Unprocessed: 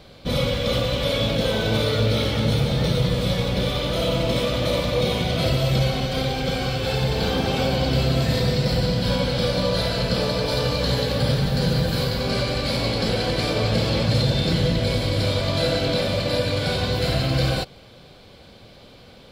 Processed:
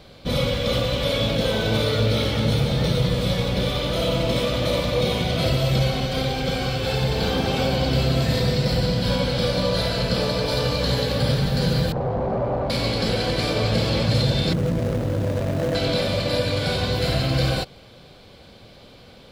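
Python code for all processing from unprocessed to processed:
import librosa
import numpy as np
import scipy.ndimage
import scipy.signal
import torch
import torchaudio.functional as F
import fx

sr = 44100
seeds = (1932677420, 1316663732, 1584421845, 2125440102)

y = fx.chain(x, sr, fx.clip_1bit(),
    fx.lowpass_res(hz=740.0, q=1.9),
    fx.hum_notches(base_hz=50, count=10), at=(11.92, 12.7))
y = fx.chain(y, sr, fx.median_filter(points=41),
    fx.low_shelf(hz=69.0, db=-10.0),
    fx.env_flatten(amount_pct=50), at=(14.53, 15.75))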